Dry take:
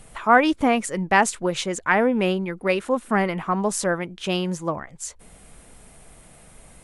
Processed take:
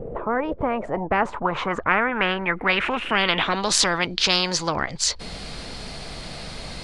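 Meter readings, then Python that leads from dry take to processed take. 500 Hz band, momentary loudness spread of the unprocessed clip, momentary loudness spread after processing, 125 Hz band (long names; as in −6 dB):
−3.0 dB, 11 LU, 16 LU, −2.0 dB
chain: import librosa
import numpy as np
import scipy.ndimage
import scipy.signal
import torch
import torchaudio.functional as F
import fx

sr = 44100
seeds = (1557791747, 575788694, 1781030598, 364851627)

y = fx.filter_sweep_lowpass(x, sr, from_hz=470.0, to_hz=4500.0, start_s=0.37, end_s=3.76, q=6.9)
y = fx.spectral_comp(y, sr, ratio=4.0)
y = F.gain(torch.from_numpy(y), -5.0).numpy()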